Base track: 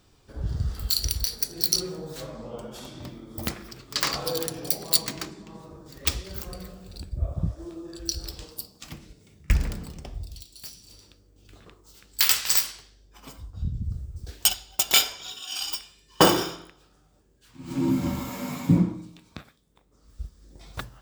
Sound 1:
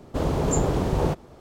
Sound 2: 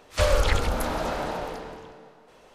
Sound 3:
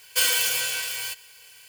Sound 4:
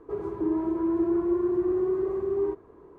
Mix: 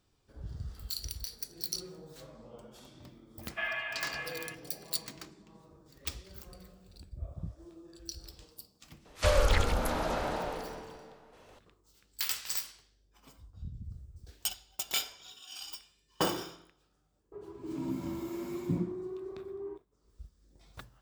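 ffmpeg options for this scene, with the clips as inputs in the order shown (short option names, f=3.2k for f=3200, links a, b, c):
-filter_complex "[0:a]volume=-13dB[a];[3:a]highpass=f=390:t=q:w=0.5412,highpass=f=390:t=q:w=1.307,lowpass=f=2.2k:t=q:w=0.5176,lowpass=f=2.2k:t=q:w=0.7071,lowpass=f=2.2k:t=q:w=1.932,afreqshift=160[b];[4:a]agate=range=-33dB:threshold=-42dB:ratio=3:release=100:detection=peak[c];[b]atrim=end=1.68,asetpts=PTS-STARTPTS,volume=-4.5dB,afade=t=in:d=0.004:c=hsin,afade=t=out:st=1.676:d=0.004:c=hsin,adelay=150381S[d];[2:a]atrim=end=2.54,asetpts=PTS-STARTPTS,volume=-4dB,afade=t=in:d=0.004:c=hsin,afade=t=out:st=2.536:d=0.004:c=hsin,adelay=9050[e];[c]atrim=end=2.98,asetpts=PTS-STARTPTS,volume=-14.5dB,afade=t=in:d=0.004:c=hsin,afade=t=out:st=2.976:d=0.004:c=hsin,adelay=17230[f];[a][d][e][f]amix=inputs=4:normalize=0"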